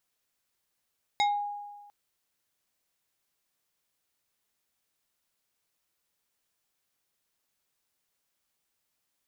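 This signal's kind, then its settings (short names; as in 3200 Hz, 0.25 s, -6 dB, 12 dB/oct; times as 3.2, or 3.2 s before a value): FM tone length 0.70 s, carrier 821 Hz, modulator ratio 3.6, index 1.1, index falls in 0.31 s exponential, decay 1.38 s, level -20.5 dB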